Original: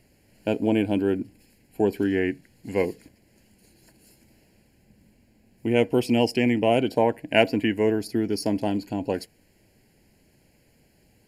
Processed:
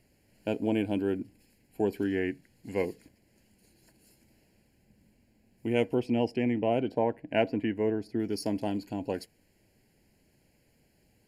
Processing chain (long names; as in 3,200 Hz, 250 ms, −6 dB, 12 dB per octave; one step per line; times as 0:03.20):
0:05.94–0:08.20: low-pass filter 1,500 Hz 6 dB per octave
level −6 dB